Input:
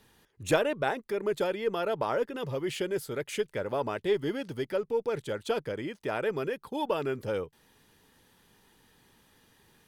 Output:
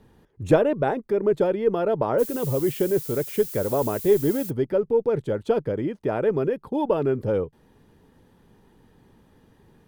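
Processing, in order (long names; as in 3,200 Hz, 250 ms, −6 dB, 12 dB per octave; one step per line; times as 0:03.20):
tilt shelving filter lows +9.5 dB, about 1,200 Hz
0:02.18–0:04.49: background noise violet −38 dBFS
level +1.5 dB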